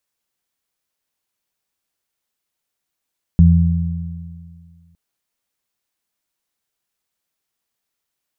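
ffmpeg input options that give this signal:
-f lavfi -i "aevalsrc='0.422*pow(10,-3*t/2.08)*sin(2*PI*84.6*t)+0.422*pow(10,-3*t/2)*sin(2*PI*169.2*t)':d=1.56:s=44100"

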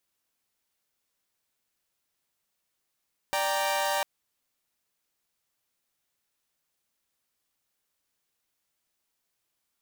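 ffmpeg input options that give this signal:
-f lavfi -i "aevalsrc='0.0422*((2*mod(587.33*t,1)-1)+(2*mod(783.99*t,1)-1)+(2*mod(932.33*t,1)-1))':d=0.7:s=44100"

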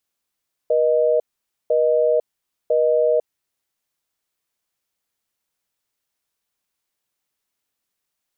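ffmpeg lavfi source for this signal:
-f lavfi -i "aevalsrc='0.141*(sin(2*PI*480*t)+sin(2*PI*620*t))*clip(min(mod(t,1),0.5-mod(t,1))/0.005,0,1)':d=2.92:s=44100"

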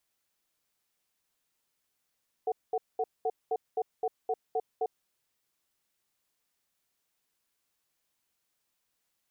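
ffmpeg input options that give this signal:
-f lavfi -i "aevalsrc='0.0355*(sin(2*PI*447*t)+sin(2*PI*740*t))*clip(min(mod(t,0.26),0.05-mod(t,0.26))/0.005,0,1)':d=2.51:s=44100"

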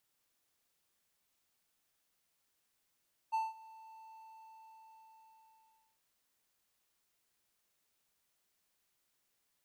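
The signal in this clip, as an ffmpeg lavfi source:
-f lavfi -i "aevalsrc='0.0422*(1-4*abs(mod(888*t+0.25,1)-0.5))':d=2.67:s=44100,afade=t=in:d=0.022,afade=t=out:st=0.022:d=0.188:silence=0.075,afade=t=out:st=0.79:d=1.88"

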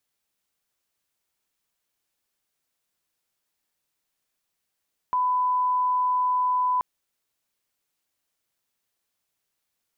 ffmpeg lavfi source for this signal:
-f lavfi -i "sine=f=1000:d=1.68:r=44100,volume=-1.94dB"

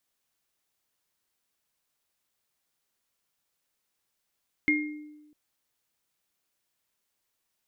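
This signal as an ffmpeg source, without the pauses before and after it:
-f lavfi -i "aevalsrc='0.0708*pow(10,-3*t/1.14)*sin(2*PI*300*t)+0.112*pow(10,-3*t/0.5)*sin(2*PI*2130*t)':d=0.65:s=44100"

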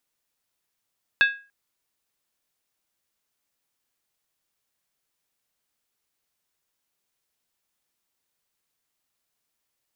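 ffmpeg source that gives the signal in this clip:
-f lavfi -i "aevalsrc='0.251*pow(10,-3*t/0.34)*sin(2*PI*1640*t)+0.126*pow(10,-3*t/0.269)*sin(2*PI*2614.2*t)+0.0631*pow(10,-3*t/0.233)*sin(2*PI*3503*t)+0.0316*pow(10,-3*t/0.224)*sin(2*PI*3765.4*t)+0.0158*pow(10,-3*t/0.209)*sin(2*PI*4350.9*t)':d=0.29:s=44100"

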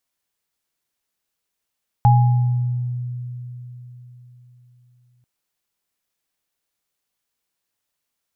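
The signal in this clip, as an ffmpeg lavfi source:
-f lavfi -i "aevalsrc='0.335*pow(10,-3*t/4.01)*sin(2*PI*123*t)+0.237*pow(10,-3*t/0.9)*sin(2*PI*827*t)':d=3.19:s=44100"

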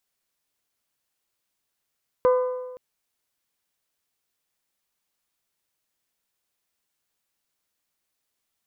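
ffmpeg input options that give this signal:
-f lavfi -i "aevalsrc='0.2*pow(10,-3*t/1.26)*sin(2*PI*504*t)+0.075*pow(10,-3*t/1.023)*sin(2*PI*1008*t)+0.0282*pow(10,-3*t/0.969)*sin(2*PI*1209.6*t)+0.0106*pow(10,-3*t/0.906)*sin(2*PI*1512*t)+0.00398*pow(10,-3*t/0.831)*sin(2*PI*2016*t)':d=0.52:s=44100"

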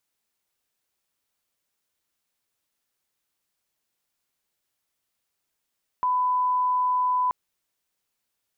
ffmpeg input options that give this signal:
-f lavfi -i "sine=f=1000:d=1.28:r=44100,volume=-1.94dB"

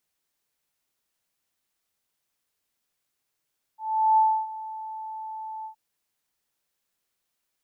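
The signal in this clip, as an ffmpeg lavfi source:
-f lavfi -i "aevalsrc='0.178*sin(2*PI*876*t)':d=1.969:s=44100,afade=t=in:d=0.393,afade=t=out:st=0.393:d=0.292:silence=0.126,afade=t=out:st=1.87:d=0.099"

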